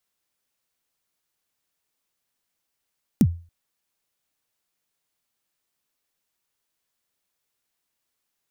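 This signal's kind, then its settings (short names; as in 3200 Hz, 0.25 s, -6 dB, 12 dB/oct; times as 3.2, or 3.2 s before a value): kick drum length 0.28 s, from 270 Hz, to 85 Hz, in 56 ms, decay 0.36 s, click on, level -9 dB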